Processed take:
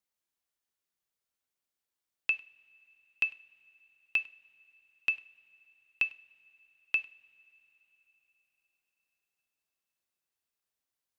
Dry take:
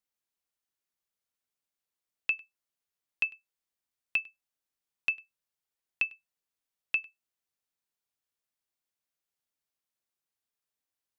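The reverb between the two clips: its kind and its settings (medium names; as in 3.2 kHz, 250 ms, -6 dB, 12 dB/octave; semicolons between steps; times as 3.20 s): two-slope reverb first 0.39 s, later 4.5 s, from -22 dB, DRR 13 dB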